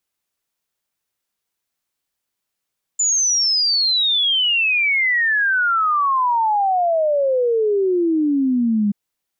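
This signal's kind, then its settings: log sweep 7.1 kHz -> 200 Hz 5.93 s -14.5 dBFS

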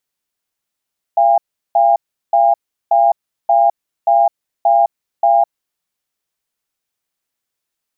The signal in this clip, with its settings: cadence 685 Hz, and 807 Hz, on 0.21 s, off 0.37 s, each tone -11 dBFS 4.53 s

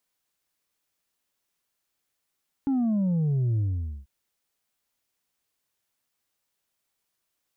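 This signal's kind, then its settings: sub drop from 280 Hz, over 1.39 s, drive 3 dB, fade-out 0.48 s, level -22 dB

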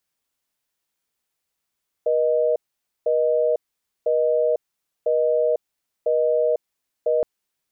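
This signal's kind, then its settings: call progress tone busy tone, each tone -19.5 dBFS 5.17 s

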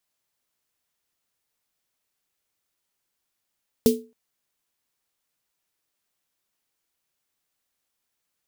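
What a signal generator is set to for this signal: snare drum length 0.27 s, tones 240 Hz, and 440 Hz, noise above 3 kHz, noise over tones -10 dB, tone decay 0.31 s, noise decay 0.21 s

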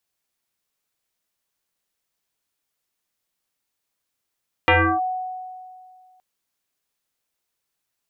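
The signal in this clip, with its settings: FM tone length 1.52 s, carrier 741 Hz, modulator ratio 0.56, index 4.8, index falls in 0.32 s linear, decay 2.14 s, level -11 dB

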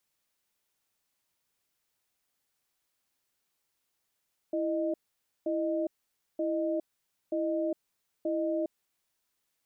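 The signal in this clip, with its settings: cadence 330 Hz, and 617 Hz, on 0.41 s, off 0.52 s, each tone -30 dBFS 4.61 s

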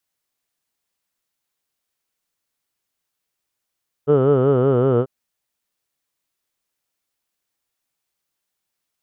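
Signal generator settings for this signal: formant vowel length 0.99 s, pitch 140 Hz, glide -2 st, vibrato depth 1.15 st, F1 450 Hz, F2 1.3 kHz, F3 3 kHz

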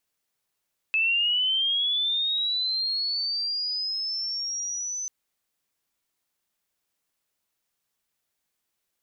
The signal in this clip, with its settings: sweep linear 2.6 kHz -> 6.1 kHz -20 dBFS -> -29 dBFS 4.14 s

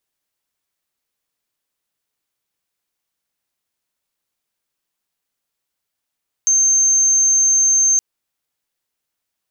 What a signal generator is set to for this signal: tone sine 6.32 kHz -11 dBFS 1.52 s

